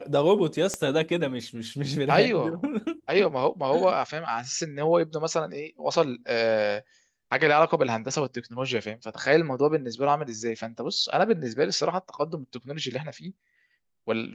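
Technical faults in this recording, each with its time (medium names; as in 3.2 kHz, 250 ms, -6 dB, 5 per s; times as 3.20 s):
0.74 s: pop -15 dBFS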